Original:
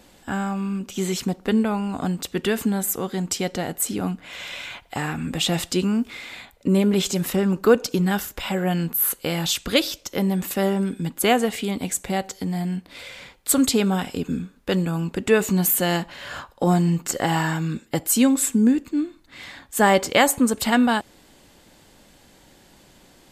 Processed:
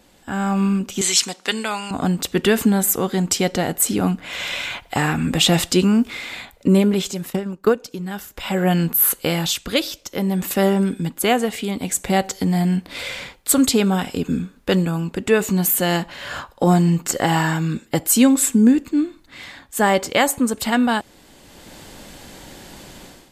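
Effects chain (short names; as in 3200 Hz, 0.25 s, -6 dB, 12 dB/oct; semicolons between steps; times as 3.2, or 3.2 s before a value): 1.01–1.91 weighting filter ITU-R 468; 7.3–7.75 transient shaper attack +11 dB, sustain -8 dB; AGC gain up to 15 dB; gain -2.5 dB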